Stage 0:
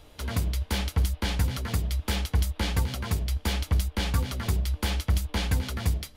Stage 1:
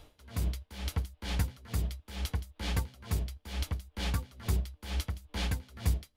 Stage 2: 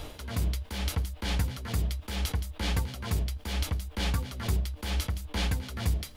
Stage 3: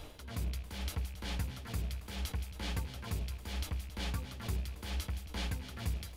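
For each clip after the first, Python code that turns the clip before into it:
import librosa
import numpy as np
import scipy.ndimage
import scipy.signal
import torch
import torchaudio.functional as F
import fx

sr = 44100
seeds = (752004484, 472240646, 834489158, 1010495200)

y1 = x * 10.0 ** (-21 * (0.5 - 0.5 * np.cos(2.0 * np.pi * 2.2 * np.arange(len(x)) / sr)) / 20.0)
y1 = y1 * 10.0 ** (-2.0 / 20.0)
y2 = fx.env_flatten(y1, sr, amount_pct=50)
y3 = fx.rattle_buzz(y2, sr, strikes_db=-34.0, level_db=-37.0)
y3 = fx.echo_split(y3, sr, split_hz=380.0, low_ms=177, high_ms=274, feedback_pct=52, wet_db=-14)
y3 = y3 * 10.0 ** (-8.0 / 20.0)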